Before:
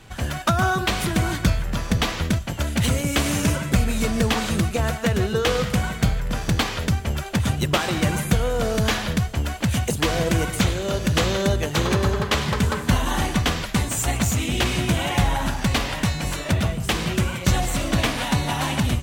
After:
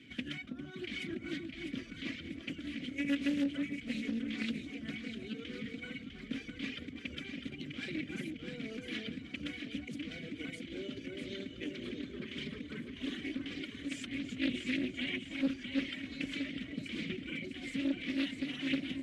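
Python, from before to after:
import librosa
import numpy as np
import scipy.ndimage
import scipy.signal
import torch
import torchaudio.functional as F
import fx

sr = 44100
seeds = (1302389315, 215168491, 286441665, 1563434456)

y = fx.cvsd(x, sr, bps=64000)
y = fx.dereverb_blind(y, sr, rt60_s=1.5)
y = fx.over_compress(y, sr, threshold_db=-29.0, ratio=-1.0)
y = fx.vowel_filter(y, sr, vowel='i')
y = fx.echo_alternate(y, sr, ms=326, hz=1000.0, feedback_pct=66, wet_db=-3.0)
y = fx.doppler_dist(y, sr, depth_ms=0.29)
y = F.gain(torch.from_numpy(y), 1.0).numpy()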